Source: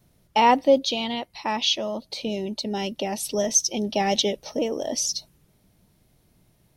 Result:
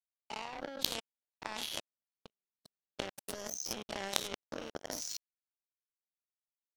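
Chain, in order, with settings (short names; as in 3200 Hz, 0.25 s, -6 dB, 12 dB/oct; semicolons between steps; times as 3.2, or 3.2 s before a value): spectral dilation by 0.12 s; level quantiser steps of 23 dB; power-law curve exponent 3; gain +4 dB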